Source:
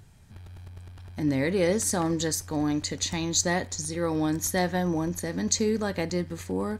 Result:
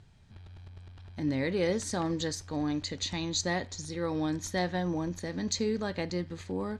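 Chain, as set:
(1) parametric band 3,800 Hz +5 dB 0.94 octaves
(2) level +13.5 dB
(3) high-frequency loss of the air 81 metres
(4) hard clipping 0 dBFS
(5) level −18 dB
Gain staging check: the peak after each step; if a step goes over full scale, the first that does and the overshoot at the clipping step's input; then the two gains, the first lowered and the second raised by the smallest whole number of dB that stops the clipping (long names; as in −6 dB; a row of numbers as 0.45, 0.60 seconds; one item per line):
−6.0, +7.5, +3.0, 0.0, −18.0 dBFS
step 2, 3.0 dB
step 2 +10.5 dB, step 5 −15 dB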